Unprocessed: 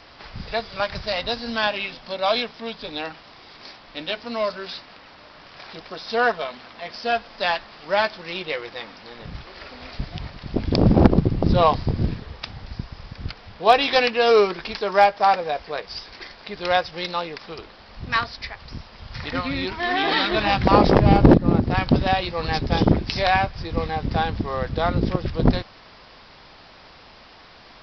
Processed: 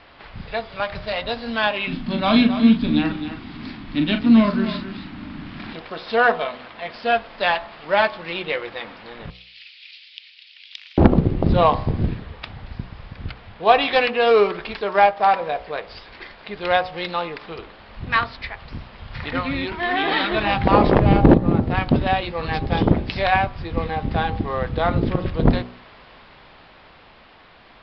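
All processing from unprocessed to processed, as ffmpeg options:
-filter_complex "[0:a]asettb=1/sr,asplit=3[s0][s1][s2];[s0]atrim=end=1.874[s3];[s1]atrim=start=1.87:end=5.73,asetpts=PTS-STARTPTS,afade=t=in:d=0.004:c=qsin,afade=t=out:st=3.856:d=0.004:c=qsin,lowshelf=f=360:t=q:w=3:g=12,asplit=2[s4][s5];[s5]adelay=40,volume=0.422[s6];[s4][s6]amix=inputs=2:normalize=0,atrim=end_sample=170226,aecho=1:1:267:0.299,atrim=end_sample=170226[s7];[s2]atrim=start=5.726[s8];[s3][s7]acrossfade=d=0.004:c1=hsin:c2=qsin[s9];[s9][s8]acrossfade=d=0.004:c1=qsin:c2=hsin,asettb=1/sr,asplit=3[s10][s11][s12];[s10]atrim=end=9.304[s13];[s11]atrim=start=9.3:end=10.98,asetpts=PTS-STARTPTS,afade=t=in:d=0.004:c=qsin,afade=t=out:st=1.676:d=0.004:c=qsin,highshelf=f=3500:g=6.5,aeval=exprs='0.237*(abs(mod(val(0)/0.237+3,4)-2)-1)':c=same,asuperpass=centerf=4500:order=8:qfactor=0.81[s14];[s12]atrim=start=10.976[s15];[s13][s14]acrossfade=d=0.004:c1=hsin:c2=qsin[s16];[s16][s15]acrossfade=d=0.004:c1=qsin:c2=hsin,lowpass=f=3600:w=0.5412,lowpass=f=3600:w=1.3066,bandreject=f=61.17:t=h:w=4,bandreject=f=122.34:t=h:w=4,bandreject=f=183.51:t=h:w=4,bandreject=f=244.68:t=h:w=4,bandreject=f=305.85:t=h:w=4,bandreject=f=367.02:t=h:w=4,bandreject=f=428.19:t=h:w=4,bandreject=f=489.36:t=h:w=4,bandreject=f=550.53:t=h:w=4,bandreject=f=611.7:t=h:w=4,bandreject=f=672.87:t=h:w=4,bandreject=f=734.04:t=h:w=4,bandreject=f=795.21:t=h:w=4,bandreject=f=856.38:t=h:w=4,bandreject=f=917.55:t=h:w=4,bandreject=f=978.72:t=h:w=4,bandreject=f=1039.89:t=h:w=4,bandreject=f=1101.06:t=h:w=4,bandreject=f=1162.23:t=h:w=4,bandreject=f=1223.4:t=h:w=4,bandreject=f=1284.57:t=h:w=4,bandreject=f=1345.74:t=h:w=4,dynaudnorm=f=150:g=21:m=1.68"

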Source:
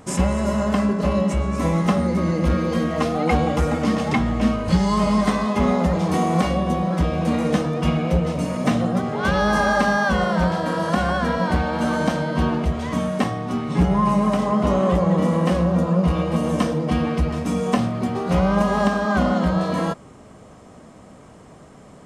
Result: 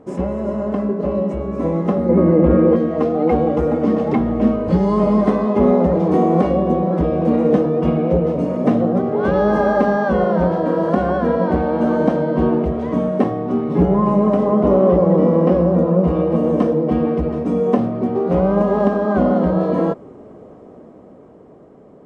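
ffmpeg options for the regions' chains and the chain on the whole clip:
-filter_complex "[0:a]asettb=1/sr,asplit=3[s0][s1][s2];[s0]atrim=end=2.094[s3];[s1]atrim=start=2.09:end=2.76,asetpts=PTS-STARTPTS,afade=t=in:d=0.004:c=qsin,afade=t=out:st=0.666:d=0.004:c=qsin,lowpass=2400,acontrast=57[s4];[s2]atrim=start=2.756[s5];[s3][s4]acrossfade=d=0.004:c1=hsin:c2=qsin[s6];[s6][s5]acrossfade=d=0.004:c1=qsin:c2=hsin,asettb=1/sr,asplit=3[s7][s8][s9];[s7]atrim=end=14.684[s10];[s8]atrim=start=14.68:end=15.73,asetpts=PTS-STARTPTS,afade=t=in:d=0.004:c=qsin,afade=t=out:st=1.046:d=0.004:c=qsin,acrossover=split=3800[s11][s12];[s12]acompressor=threshold=0.00224:ratio=4:attack=1:release=60[s13];[s11][s13]amix=inputs=2:normalize=0,equalizer=f=5300:t=o:w=0.39:g=8.5,bandreject=f=1800:w=25[s14];[s9]atrim=start=15.726[s15];[s10][s14]acrossfade=d=0.004:c1=hsin:c2=qsin[s16];[s16][s15]acrossfade=d=0.004:c1=qsin:c2=hsin,dynaudnorm=f=150:g=21:m=3.76,lowpass=f=1500:p=1,equalizer=f=400:t=o:w=1.9:g=15,volume=0.355"

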